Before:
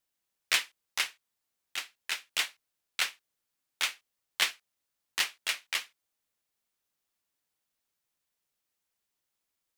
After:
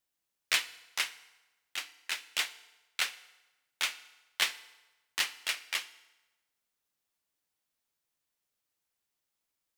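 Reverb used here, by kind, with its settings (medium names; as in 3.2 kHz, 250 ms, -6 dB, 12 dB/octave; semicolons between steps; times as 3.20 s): FDN reverb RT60 1.1 s, low-frequency decay 0.8×, high-frequency decay 0.85×, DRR 13.5 dB; trim -1.5 dB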